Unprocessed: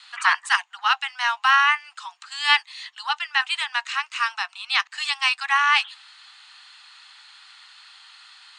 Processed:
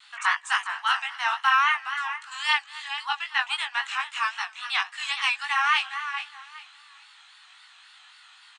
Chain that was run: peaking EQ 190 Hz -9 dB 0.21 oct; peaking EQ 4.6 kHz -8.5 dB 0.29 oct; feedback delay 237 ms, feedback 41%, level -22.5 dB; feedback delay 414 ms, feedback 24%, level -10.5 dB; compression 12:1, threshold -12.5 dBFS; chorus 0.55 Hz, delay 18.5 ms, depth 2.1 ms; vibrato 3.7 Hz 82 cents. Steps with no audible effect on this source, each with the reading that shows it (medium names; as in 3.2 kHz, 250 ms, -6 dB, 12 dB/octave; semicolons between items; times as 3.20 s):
peaking EQ 190 Hz: input has nothing below 680 Hz